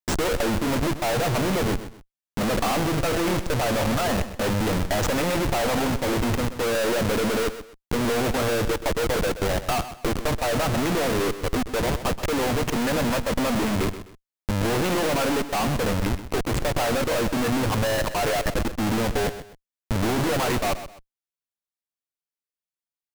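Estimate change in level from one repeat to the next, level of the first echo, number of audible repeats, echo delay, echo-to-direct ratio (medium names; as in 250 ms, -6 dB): -10.5 dB, -12.5 dB, 2, 128 ms, -12.0 dB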